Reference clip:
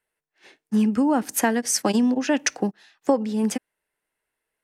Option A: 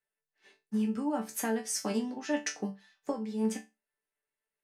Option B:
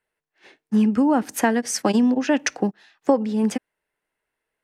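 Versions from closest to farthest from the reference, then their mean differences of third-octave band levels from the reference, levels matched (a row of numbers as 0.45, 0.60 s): B, A; 1.5, 3.0 dB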